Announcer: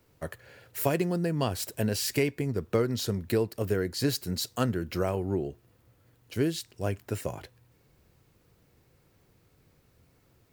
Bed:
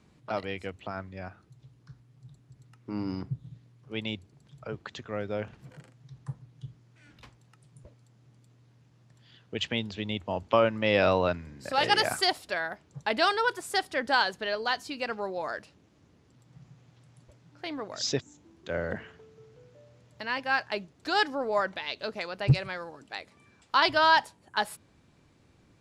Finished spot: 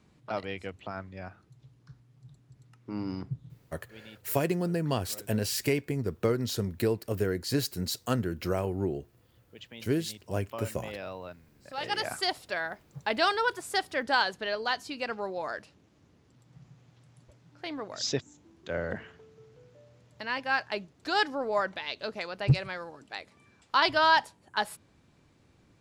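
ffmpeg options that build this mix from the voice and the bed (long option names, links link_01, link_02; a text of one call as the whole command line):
ffmpeg -i stem1.wav -i stem2.wav -filter_complex "[0:a]adelay=3500,volume=-1dB[link_01];[1:a]volume=14dB,afade=type=out:start_time=3.37:duration=0.6:silence=0.177828,afade=type=in:start_time=11.55:duration=1.07:silence=0.16788[link_02];[link_01][link_02]amix=inputs=2:normalize=0" out.wav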